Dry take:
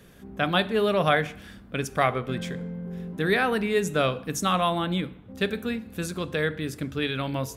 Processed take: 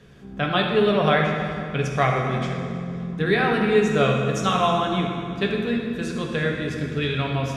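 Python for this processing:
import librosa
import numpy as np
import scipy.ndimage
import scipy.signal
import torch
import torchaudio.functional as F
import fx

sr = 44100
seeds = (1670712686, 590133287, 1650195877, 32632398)

y = scipy.signal.sosfilt(scipy.signal.butter(2, 5900.0, 'lowpass', fs=sr, output='sos'), x)
y = fx.rev_fdn(y, sr, rt60_s=2.4, lf_ratio=1.55, hf_ratio=0.75, size_ms=42.0, drr_db=-0.5)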